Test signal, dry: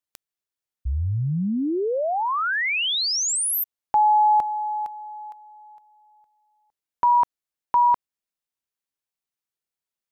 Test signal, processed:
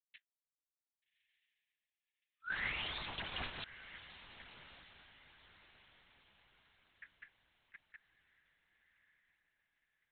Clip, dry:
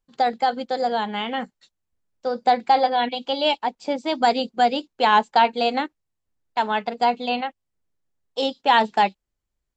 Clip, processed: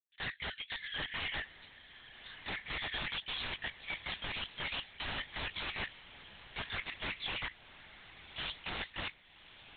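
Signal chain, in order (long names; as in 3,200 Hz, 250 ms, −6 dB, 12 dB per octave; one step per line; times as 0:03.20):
Butterworth high-pass 1,700 Hz 96 dB per octave
downward expander −54 dBFS
low-pass filter 2,900 Hz 6 dB per octave
floating-point word with a short mantissa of 2 bits
flanger 0.89 Hz, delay 5.6 ms, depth 9.7 ms, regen −54%
wrap-around overflow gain 36 dB
feedback delay with all-pass diffusion 1,198 ms, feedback 40%, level −14 dB
linear-prediction vocoder at 8 kHz whisper
level +7.5 dB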